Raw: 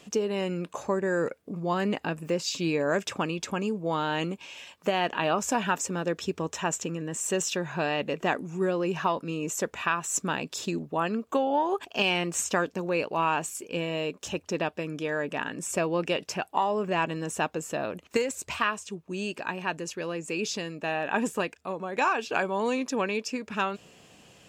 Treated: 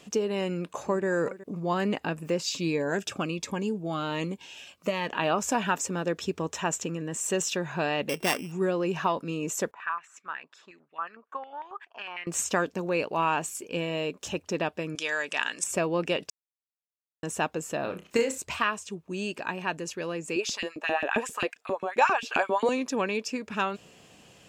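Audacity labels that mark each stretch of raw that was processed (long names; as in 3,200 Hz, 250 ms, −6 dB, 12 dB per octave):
0.490000	1.060000	delay throw 370 ms, feedback 15%, level −16 dB
2.590000	5.080000	phaser whose notches keep moving one way falling 1.3 Hz
8.090000	8.520000	samples sorted by size in blocks of 16 samples
9.710000	12.270000	band-pass on a step sequencer 11 Hz 980–2,300 Hz
14.950000	15.640000	meter weighting curve ITU-R 468
16.300000	17.230000	silence
17.800000	18.380000	flutter between parallel walls apart 5.2 metres, dies away in 0.23 s
20.360000	22.690000	auto-filter high-pass saw up 7.5 Hz 210–3,000 Hz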